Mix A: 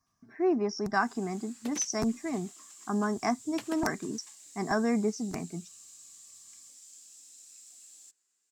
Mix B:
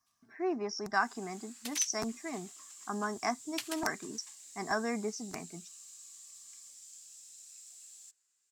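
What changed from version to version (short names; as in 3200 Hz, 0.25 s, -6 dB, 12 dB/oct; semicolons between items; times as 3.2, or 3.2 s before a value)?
first sound: remove steep high-pass 180 Hz 48 dB/oct; second sound: add tilt shelf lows -10 dB, about 1400 Hz; master: add low shelf 450 Hz -11.5 dB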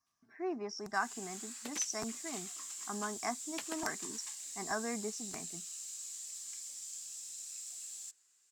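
speech -4.5 dB; first sound +7.0 dB; second sound: add tilt shelf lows +10 dB, about 1400 Hz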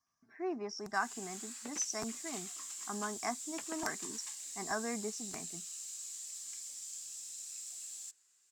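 second sound: add air absorption 380 m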